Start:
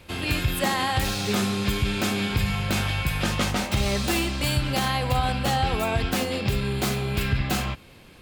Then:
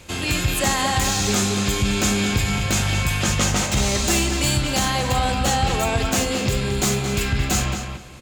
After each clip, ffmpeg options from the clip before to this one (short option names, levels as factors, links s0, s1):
-filter_complex "[0:a]equalizer=f=6900:w=2.2:g=13,asplit=2[s0][s1];[s1]asoftclip=type=tanh:threshold=0.0562,volume=0.562[s2];[s0][s2]amix=inputs=2:normalize=0,asplit=2[s3][s4];[s4]adelay=222,lowpass=f=4200:p=1,volume=0.501,asplit=2[s5][s6];[s6]adelay=222,lowpass=f=4200:p=1,volume=0.24,asplit=2[s7][s8];[s8]adelay=222,lowpass=f=4200:p=1,volume=0.24[s9];[s3][s5][s7][s9]amix=inputs=4:normalize=0"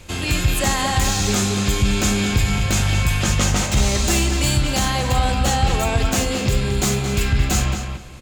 -af "lowshelf=f=71:g=9.5"